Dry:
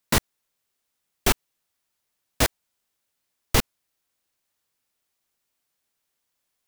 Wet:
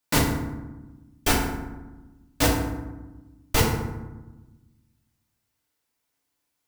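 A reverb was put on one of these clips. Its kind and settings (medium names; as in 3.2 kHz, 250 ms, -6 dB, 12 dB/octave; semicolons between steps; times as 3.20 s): FDN reverb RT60 1.1 s, low-frequency decay 1.6×, high-frequency decay 0.5×, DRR -4.5 dB; trim -4.5 dB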